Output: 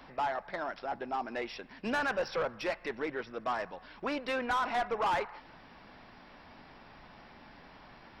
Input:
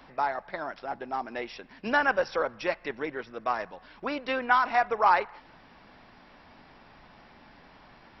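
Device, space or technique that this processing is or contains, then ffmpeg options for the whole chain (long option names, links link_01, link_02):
saturation between pre-emphasis and de-emphasis: -af "highshelf=frequency=3100:gain=11.5,asoftclip=type=tanh:threshold=-25.5dB,highshelf=frequency=3100:gain=-11.5"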